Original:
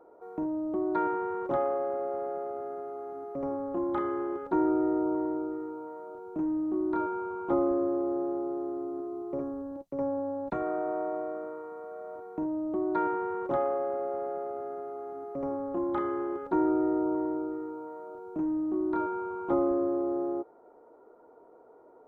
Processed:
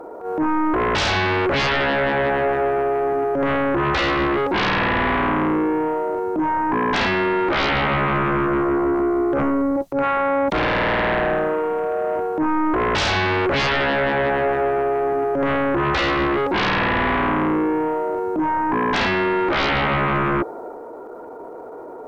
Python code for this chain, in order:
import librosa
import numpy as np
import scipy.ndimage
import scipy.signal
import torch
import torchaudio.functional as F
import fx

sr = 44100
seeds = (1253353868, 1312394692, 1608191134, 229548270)

y = fx.transient(x, sr, attack_db=-12, sustain_db=3)
y = fx.fold_sine(y, sr, drive_db=17, ceiling_db=-16.5)